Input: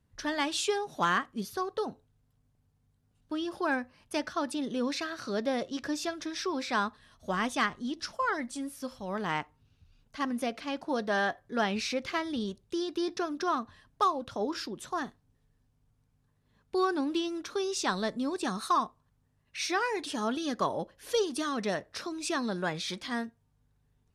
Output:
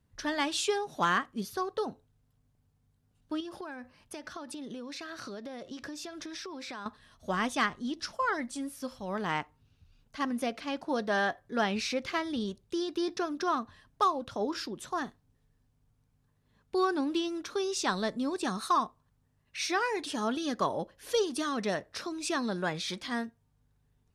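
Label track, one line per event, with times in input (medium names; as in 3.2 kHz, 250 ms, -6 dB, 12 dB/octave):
3.400000	6.860000	compression 16:1, threshold -37 dBFS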